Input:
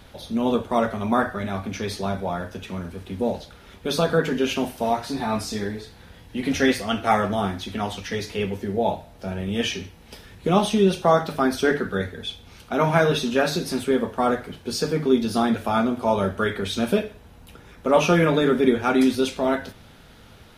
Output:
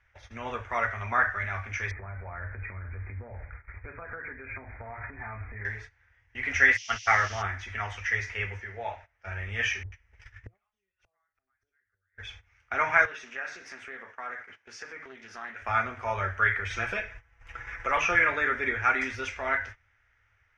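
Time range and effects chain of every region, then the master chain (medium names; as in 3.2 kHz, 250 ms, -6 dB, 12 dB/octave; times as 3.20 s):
1.91–5.65 s: bass shelf 430 Hz +10.5 dB + compression, threshold -27 dBFS + brick-wall FIR low-pass 2.5 kHz
6.76–7.41 s: gate -26 dBFS, range -42 dB + band noise 2.9–6.1 kHz -34 dBFS
8.60–9.27 s: low-pass 5.8 kHz + bass shelf 390 Hz -8 dB
9.83–12.18 s: bands offset in time lows, highs 90 ms, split 750 Hz + inverted gate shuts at -20 dBFS, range -37 dB + bass shelf 120 Hz +8 dB
13.05–15.62 s: high-pass 170 Hz 24 dB/octave + compression 2.5:1, threshold -34 dBFS + loudspeaker Doppler distortion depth 0.13 ms
16.70–18.15 s: bass shelf 62 Hz +8.5 dB + comb 6 ms, depth 53% + three bands compressed up and down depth 40%
whole clip: gate -38 dBFS, range -17 dB; FFT filter 110 Hz 0 dB, 160 Hz -25 dB, 980 Hz -3 dB, 2 kHz +13 dB, 4.1 kHz -18 dB, 5.9 kHz -2 dB, 11 kHz -30 dB; trim -3 dB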